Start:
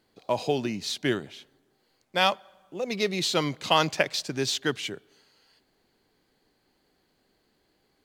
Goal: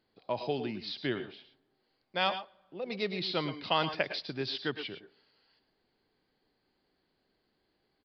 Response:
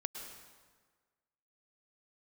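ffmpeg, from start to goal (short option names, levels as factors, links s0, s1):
-filter_complex "[0:a]aresample=11025,aresample=44100[s0];[1:a]atrim=start_sample=2205,afade=t=out:st=0.17:d=0.01,atrim=end_sample=7938[s1];[s0][s1]afir=irnorm=-1:irlink=0,volume=0.562"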